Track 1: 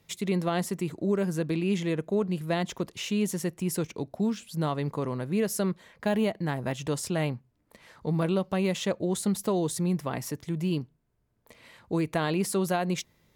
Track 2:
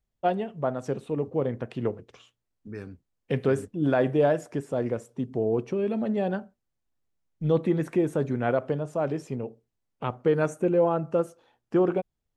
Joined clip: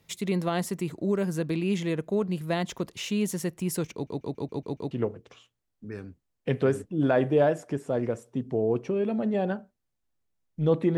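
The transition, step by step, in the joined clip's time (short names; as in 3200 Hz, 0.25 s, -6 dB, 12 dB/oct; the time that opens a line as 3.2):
track 1
3.93 stutter in place 0.14 s, 7 plays
4.91 switch to track 2 from 1.74 s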